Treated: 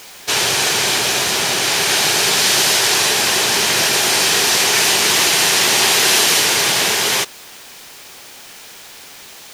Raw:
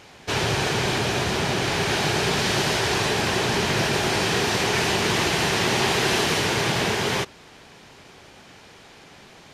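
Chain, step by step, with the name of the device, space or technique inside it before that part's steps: turntable without a phono preamp (RIAA curve recording; white noise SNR 26 dB); trim +4.5 dB

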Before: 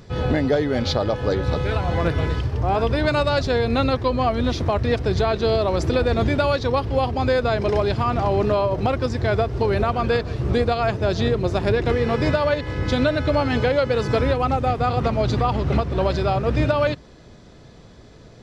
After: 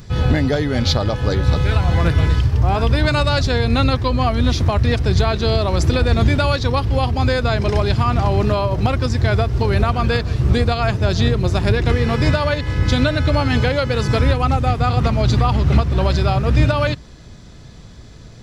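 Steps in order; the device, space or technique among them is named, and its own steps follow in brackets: smiley-face EQ (bass shelf 150 Hz +6 dB; peaking EQ 480 Hz -6 dB 1.7 oct; treble shelf 6.6 kHz +8.5 dB); trim +4 dB

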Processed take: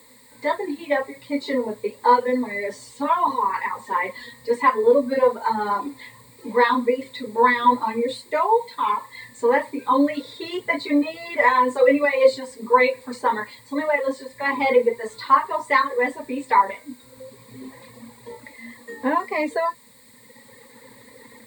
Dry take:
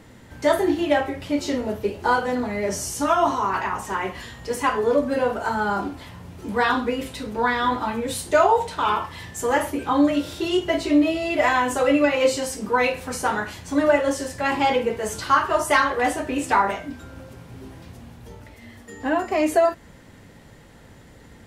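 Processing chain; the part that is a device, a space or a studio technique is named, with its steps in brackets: reverb removal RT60 1.6 s; dictaphone (band-pass 260–3600 Hz; level rider; wow and flutter 25 cents; white noise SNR 30 dB); rippled EQ curve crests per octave 0.98, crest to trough 15 dB; trim -8 dB

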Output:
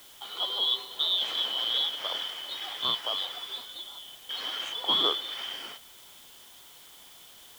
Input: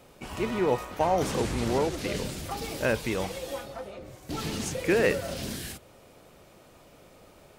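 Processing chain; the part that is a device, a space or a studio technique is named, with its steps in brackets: split-band scrambled radio (four frequency bands reordered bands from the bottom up 2413; band-pass 390–3000 Hz; white noise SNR 20 dB); trim +1.5 dB

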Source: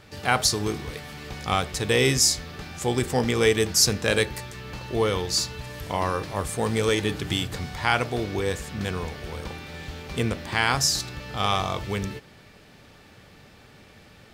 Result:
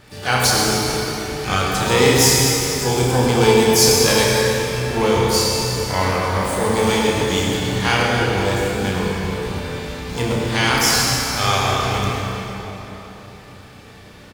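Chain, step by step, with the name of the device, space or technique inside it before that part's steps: shimmer-style reverb (harmony voices +12 st -8 dB; reverberation RT60 3.8 s, pre-delay 58 ms, DRR -2 dB); 2.86–4.07 s: band-stop 1.9 kHz, Q 7; doubling 32 ms -4 dB; trim +1.5 dB

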